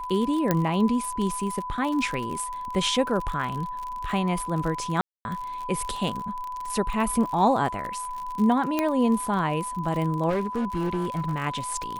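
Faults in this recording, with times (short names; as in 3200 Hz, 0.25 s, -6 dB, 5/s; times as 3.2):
crackle 45/s -30 dBFS
tone 1000 Hz -31 dBFS
0.51 pop -8 dBFS
5.01–5.25 gap 0.241 s
8.79 pop -10 dBFS
10.29–11.33 clipped -22.5 dBFS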